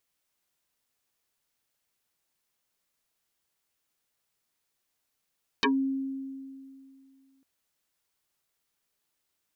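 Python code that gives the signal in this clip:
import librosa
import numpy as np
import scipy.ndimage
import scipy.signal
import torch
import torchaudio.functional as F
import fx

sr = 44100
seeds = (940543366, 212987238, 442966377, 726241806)

y = fx.fm2(sr, length_s=1.8, level_db=-20.0, carrier_hz=269.0, ratio=2.55, index=7.9, index_s=0.13, decay_s=2.47, shape='exponential')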